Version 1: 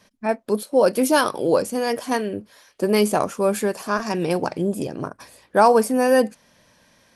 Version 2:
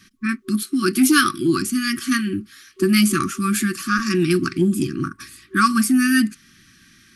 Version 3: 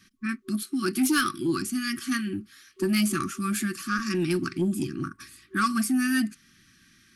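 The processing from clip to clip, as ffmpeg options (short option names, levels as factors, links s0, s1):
-af "afftfilt=real='re*(1-between(b*sr/4096,380,1100))':imag='im*(1-between(b*sr/4096,380,1100))':win_size=4096:overlap=0.75,acontrast=70"
-af "asoftclip=type=tanh:threshold=0.422,volume=0.447"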